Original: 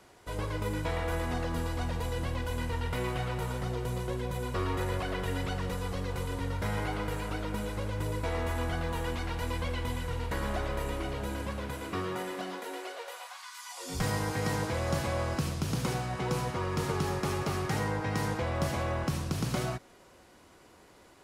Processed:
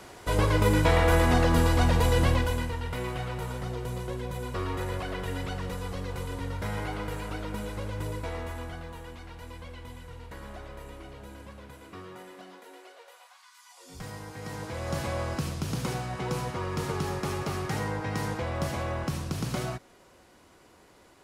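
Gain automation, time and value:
2.31 s +10.5 dB
2.76 s -0.5 dB
8.07 s -0.5 dB
9.07 s -10 dB
14.32 s -10 dB
15.02 s 0 dB

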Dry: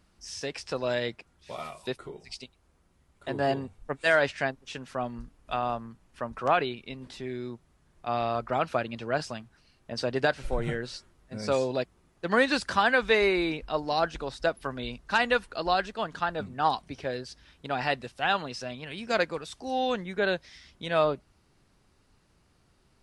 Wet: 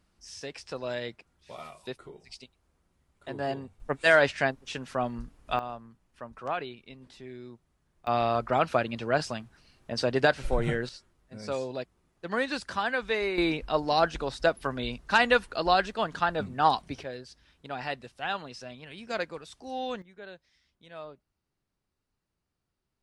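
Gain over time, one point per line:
-5 dB
from 3.8 s +2.5 dB
from 5.59 s -8 dB
from 8.07 s +2.5 dB
from 10.89 s -6 dB
from 13.38 s +2.5 dB
from 17.03 s -6 dB
from 20.02 s -18.5 dB

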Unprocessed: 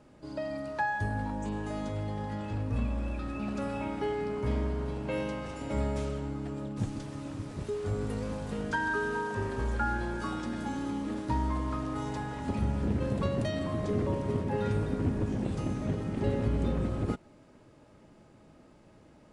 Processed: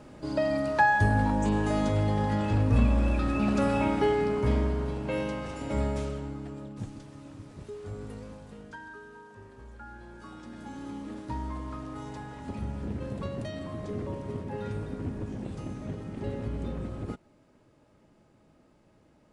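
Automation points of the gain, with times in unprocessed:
3.86 s +8.5 dB
4.99 s +2 dB
5.85 s +2 dB
7.05 s -7 dB
8.11 s -7 dB
9.06 s -16.5 dB
9.78 s -16.5 dB
10.91 s -5 dB

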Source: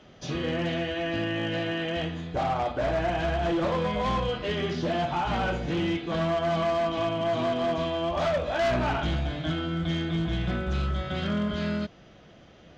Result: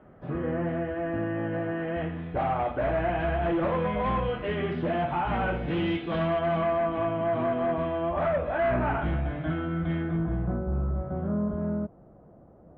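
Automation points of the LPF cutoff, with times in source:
LPF 24 dB/oct
1.71 s 1600 Hz
2.32 s 2500 Hz
5.48 s 2500 Hz
5.95 s 3600 Hz
6.88 s 2100 Hz
9.94 s 2100 Hz
10.61 s 1000 Hz

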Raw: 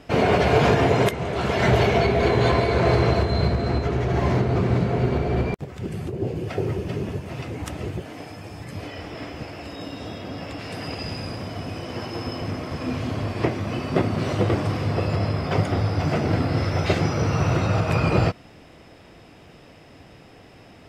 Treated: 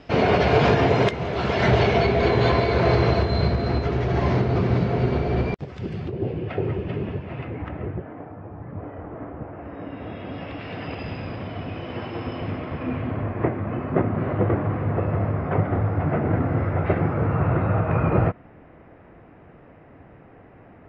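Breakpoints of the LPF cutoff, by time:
LPF 24 dB/oct
5.77 s 5500 Hz
6.42 s 3100 Hz
7.16 s 3100 Hz
8.34 s 1400 Hz
9.47 s 1400 Hz
10.37 s 3300 Hz
12.5 s 3300 Hz
13.38 s 1900 Hz

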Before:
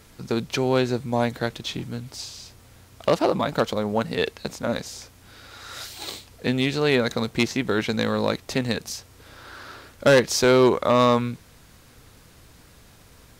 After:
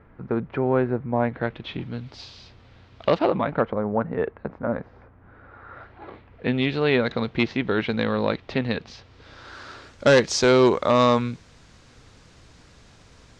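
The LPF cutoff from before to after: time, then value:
LPF 24 dB/oct
1.07 s 1800 Hz
2.06 s 4100 Hz
3.12 s 4100 Hz
3.8 s 1600 Hz
6.09 s 1600 Hz
6.59 s 3600 Hz
8.89 s 3600 Hz
9.59 s 7200 Hz

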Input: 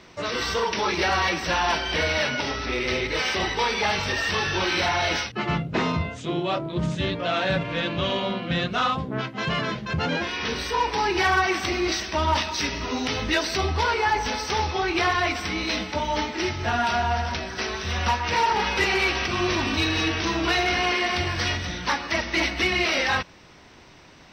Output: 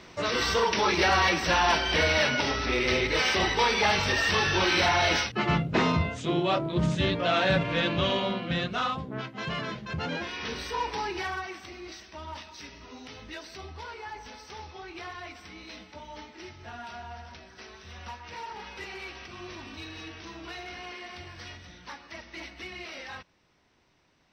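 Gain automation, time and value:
7.91 s 0 dB
9.05 s -7 dB
10.94 s -7 dB
11.65 s -18 dB

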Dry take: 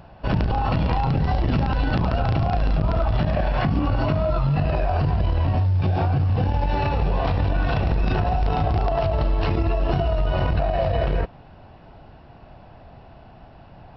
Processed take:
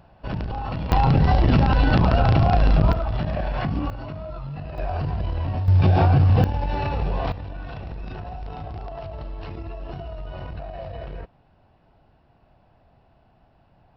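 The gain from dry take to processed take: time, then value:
-7 dB
from 0.92 s +4 dB
from 2.93 s -4 dB
from 3.9 s -12.5 dB
from 4.78 s -5 dB
from 5.68 s +4.5 dB
from 6.44 s -3 dB
from 7.32 s -13 dB

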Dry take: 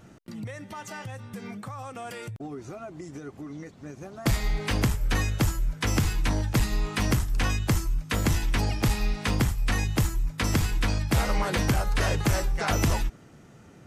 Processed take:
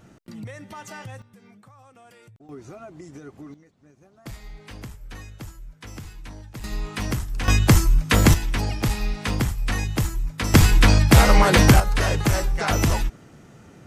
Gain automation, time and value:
0 dB
from 1.22 s -13 dB
from 2.49 s -1.5 dB
from 3.54 s -14 dB
from 6.64 s -2 dB
from 7.48 s +9.5 dB
from 8.34 s +1 dB
from 10.54 s +11 dB
from 11.8 s +3.5 dB

